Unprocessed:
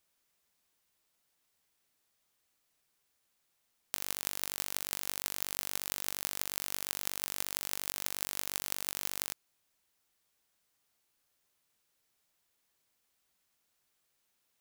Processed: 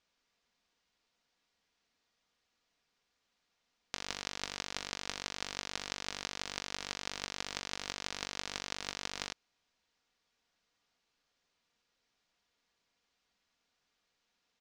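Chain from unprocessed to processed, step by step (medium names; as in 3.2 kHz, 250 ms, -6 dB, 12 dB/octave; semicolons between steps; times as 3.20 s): low-pass 5.8 kHz 24 dB/octave; comb 4.2 ms, depth 33%; trim +1.5 dB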